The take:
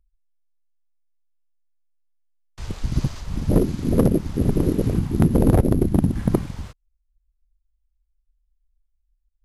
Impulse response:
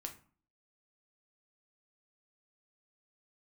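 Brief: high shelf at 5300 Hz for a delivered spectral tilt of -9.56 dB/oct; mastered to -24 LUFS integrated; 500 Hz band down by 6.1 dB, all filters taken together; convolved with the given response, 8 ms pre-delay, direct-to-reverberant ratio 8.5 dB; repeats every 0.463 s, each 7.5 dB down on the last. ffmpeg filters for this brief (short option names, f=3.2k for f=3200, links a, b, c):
-filter_complex "[0:a]equalizer=f=500:t=o:g=-8.5,highshelf=f=5.3k:g=4,aecho=1:1:463|926|1389|1852|2315:0.422|0.177|0.0744|0.0312|0.0131,asplit=2[a][b];[1:a]atrim=start_sample=2205,adelay=8[c];[b][c]afir=irnorm=-1:irlink=0,volume=-5.5dB[d];[a][d]amix=inputs=2:normalize=0,volume=-2.5dB"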